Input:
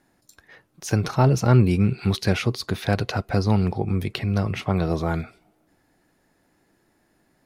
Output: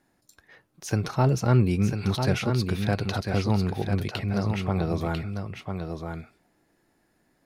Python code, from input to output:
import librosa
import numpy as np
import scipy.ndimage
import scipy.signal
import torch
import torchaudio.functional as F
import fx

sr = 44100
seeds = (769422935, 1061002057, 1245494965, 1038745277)

y = x + 10.0 ** (-6.0 / 20.0) * np.pad(x, (int(997 * sr / 1000.0), 0))[:len(x)]
y = F.gain(torch.from_numpy(y), -4.0).numpy()